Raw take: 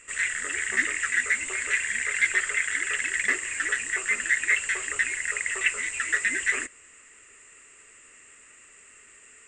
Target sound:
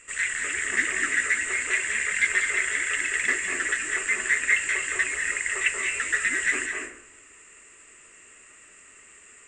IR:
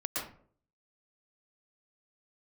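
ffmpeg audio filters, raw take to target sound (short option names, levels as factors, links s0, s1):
-filter_complex "[0:a]asplit=2[s0][s1];[1:a]atrim=start_sample=2205,asetrate=25578,aresample=44100[s2];[s1][s2]afir=irnorm=-1:irlink=0,volume=0.531[s3];[s0][s3]amix=inputs=2:normalize=0,volume=0.631"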